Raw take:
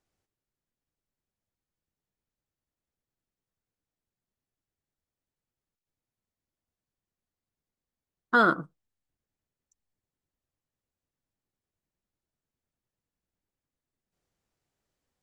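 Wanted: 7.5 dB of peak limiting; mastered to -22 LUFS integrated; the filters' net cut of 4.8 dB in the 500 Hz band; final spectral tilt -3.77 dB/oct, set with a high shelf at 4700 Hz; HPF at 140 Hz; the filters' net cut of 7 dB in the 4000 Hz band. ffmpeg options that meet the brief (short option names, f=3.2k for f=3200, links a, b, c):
-af "highpass=140,equalizer=f=500:t=o:g=-6,equalizer=f=4k:t=o:g=-6.5,highshelf=f=4.7k:g=-4.5,volume=10dB,alimiter=limit=-10.5dB:level=0:latency=1"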